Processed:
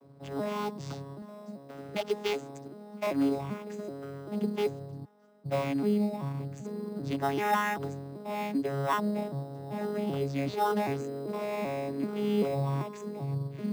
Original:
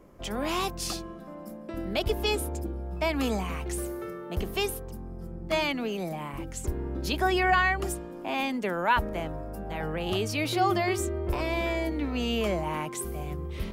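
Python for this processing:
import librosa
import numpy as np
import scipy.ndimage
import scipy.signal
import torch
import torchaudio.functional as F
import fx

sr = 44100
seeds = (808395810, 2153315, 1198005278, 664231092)

p1 = fx.vocoder_arp(x, sr, chord='bare fifth', root=49, every_ms=388)
p2 = fx.tilt_eq(p1, sr, slope=3.0, at=(1.22, 3.07))
p3 = fx.highpass(p2, sr, hz=1100.0, slope=12, at=(5.04, 5.44), fade=0.02)
p4 = fx.sample_hold(p3, sr, seeds[0], rate_hz=4500.0, jitter_pct=0)
p5 = p3 + (p4 * librosa.db_to_amplitude(-8.5))
y = p5 * librosa.db_to_amplitude(-3.0)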